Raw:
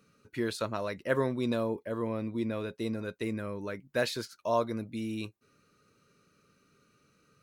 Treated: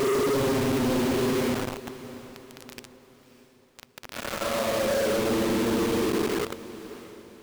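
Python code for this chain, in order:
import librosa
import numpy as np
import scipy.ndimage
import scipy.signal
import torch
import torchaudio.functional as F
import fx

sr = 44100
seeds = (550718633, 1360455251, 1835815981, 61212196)

p1 = fx.delta_mod(x, sr, bps=64000, step_db=-43.0)
p2 = fx.highpass(p1, sr, hz=160.0, slope=6)
p3 = fx.env_lowpass_down(p2, sr, base_hz=1300.0, full_db=-26.5)
p4 = fx.bass_treble(p3, sr, bass_db=14, treble_db=15)
p5 = fx.wah_lfo(p4, sr, hz=2.2, low_hz=310.0, high_hz=3400.0, q=2.3)
p6 = fx.paulstretch(p5, sr, seeds[0], factor=11.0, window_s=0.05, from_s=1.18)
p7 = fx.quant_companded(p6, sr, bits=2)
p8 = p7 + fx.echo_diffused(p7, sr, ms=612, feedback_pct=42, wet_db=-15.5, dry=0)
y = p8 * librosa.db_to_amplitude(2.0)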